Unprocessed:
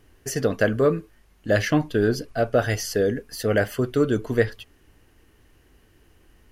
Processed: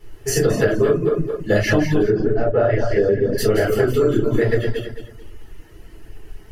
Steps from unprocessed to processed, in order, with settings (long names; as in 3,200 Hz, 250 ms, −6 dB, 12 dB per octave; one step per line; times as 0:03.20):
feedback delay that plays each chunk backwards 109 ms, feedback 51%, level −2.5 dB
0:02.09–0:03.38: low-pass filter 2,100 Hz 12 dB per octave
convolution reverb RT60 0.40 s, pre-delay 5 ms, DRR −6.5 dB
reverb reduction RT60 0.51 s
downward compressor 10 to 1, threshold −13 dBFS, peak gain reduction 13 dB